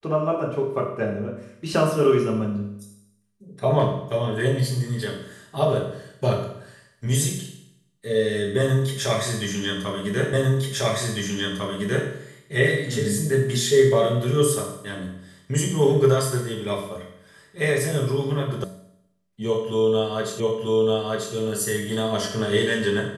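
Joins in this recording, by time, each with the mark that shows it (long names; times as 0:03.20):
0:10.33: the same again, the last 1.75 s
0:18.64: cut off before it has died away
0:20.40: the same again, the last 0.94 s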